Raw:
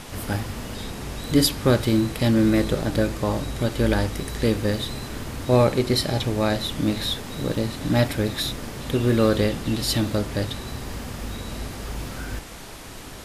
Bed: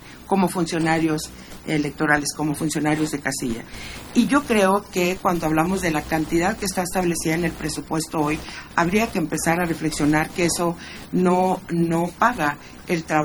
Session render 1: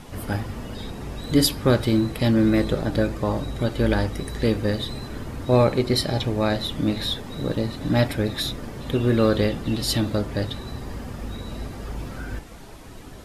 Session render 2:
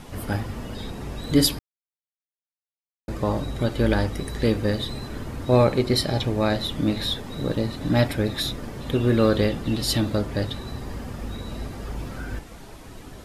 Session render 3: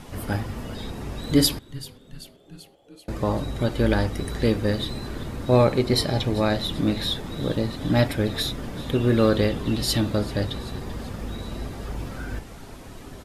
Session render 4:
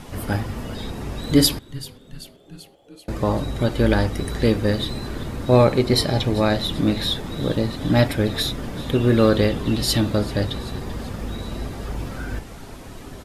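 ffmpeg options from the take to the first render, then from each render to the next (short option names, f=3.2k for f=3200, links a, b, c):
-af "afftdn=nr=9:nf=-39"
-filter_complex "[0:a]asplit=3[a][b][c];[a]atrim=end=1.59,asetpts=PTS-STARTPTS,afade=t=out:st=1.586:d=0.004:c=hsin[d];[b]atrim=start=1.59:end=3.08,asetpts=PTS-STARTPTS,volume=0[e];[c]atrim=start=3.08,asetpts=PTS-STARTPTS,afade=t=in:d=0.004:c=hsin[f];[d][e][f]concat=n=3:v=0:a=1"
-filter_complex "[0:a]asplit=7[a][b][c][d][e][f][g];[b]adelay=387,afreqshift=-150,volume=-18dB[h];[c]adelay=774,afreqshift=-300,volume=-22dB[i];[d]adelay=1161,afreqshift=-450,volume=-26dB[j];[e]adelay=1548,afreqshift=-600,volume=-30dB[k];[f]adelay=1935,afreqshift=-750,volume=-34.1dB[l];[g]adelay=2322,afreqshift=-900,volume=-38.1dB[m];[a][h][i][j][k][l][m]amix=inputs=7:normalize=0"
-af "volume=3dB"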